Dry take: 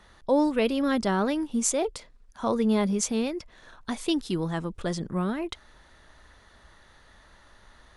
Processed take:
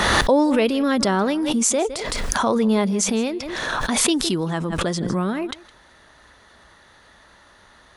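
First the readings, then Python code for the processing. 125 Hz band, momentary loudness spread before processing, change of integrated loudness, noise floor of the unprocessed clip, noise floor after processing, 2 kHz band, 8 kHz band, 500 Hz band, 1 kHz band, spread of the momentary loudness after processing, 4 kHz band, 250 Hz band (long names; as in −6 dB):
+6.0 dB, 11 LU, +6.5 dB, −57 dBFS, −52 dBFS, +12.0 dB, +9.0 dB, +6.0 dB, +8.5 dB, 8 LU, +11.5 dB, +5.5 dB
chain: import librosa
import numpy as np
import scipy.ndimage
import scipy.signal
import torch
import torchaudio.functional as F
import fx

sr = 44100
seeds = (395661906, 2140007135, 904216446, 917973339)

p1 = fx.highpass(x, sr, hz=130.0, slope=6)
p2 = p1 + fx.echo_single(p1, sr, ms=162, db=-20.5, dry=0)
p3 = fx.pre_swell(p2, sr, db_per_s=20.0)
y = F.gain(torch.from_numpy(p3), 5.5).numpy()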